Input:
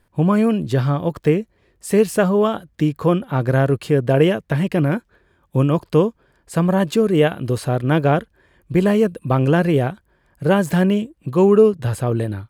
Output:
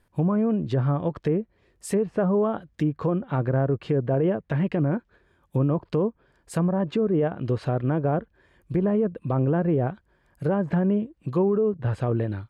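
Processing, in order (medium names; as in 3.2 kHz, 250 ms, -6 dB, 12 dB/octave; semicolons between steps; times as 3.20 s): low-pass that closes with the level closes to 1.1 kHz, closed at -13.5 dBFS; peak limiter -11.5 dBFS, peak gain reduction 8.5 dB; trim -4 dB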